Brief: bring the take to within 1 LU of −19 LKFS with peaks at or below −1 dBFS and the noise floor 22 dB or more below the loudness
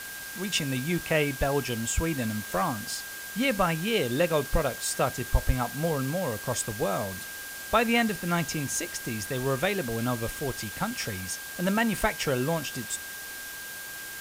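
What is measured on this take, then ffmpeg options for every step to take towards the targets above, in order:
interfering tone 1,600 Hz; level of the tone −40 dBFS; background noise floor −39 dBFS; target noise floor −51 dBFS; integrated loudness −28.5 LKFS; sample peak −9.0 dBFS; target loudness −19.0 LKFS
→ -af "bandreject=frequency=1600:width=30"
-af "afftdn=noise_reduction=12:noise_floor=-39"
-af "volume=9.5dB,alimiter=limit=-1dB:level=0:latency=1"

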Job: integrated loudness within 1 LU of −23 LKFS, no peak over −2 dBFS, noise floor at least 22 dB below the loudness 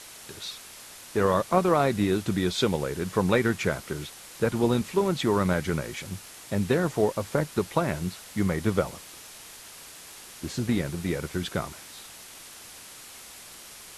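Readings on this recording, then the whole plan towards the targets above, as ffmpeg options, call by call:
background noise floor −46 dBFS; target noise floor −49 dBFS; integrated loudness −27.0 LKFS; sample peak −9.5 dBFS; target loudness −23.0 LKFS
→ -af "afftdn=noise_reduction=6:noise_floor=-46"
-af "volume=4dB"

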